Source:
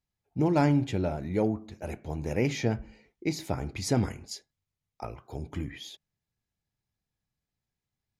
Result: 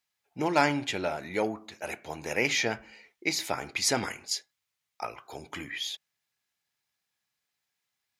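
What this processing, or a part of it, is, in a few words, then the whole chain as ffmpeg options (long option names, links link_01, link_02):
filter by subtraction: -filter_complex "[0:a]asplit=2[link_01][link_02];[link_02]lowpass=1900,volume=-1[link_03];[link_01][link_03]amix=inputs=2:normalize=0,volume=8dB"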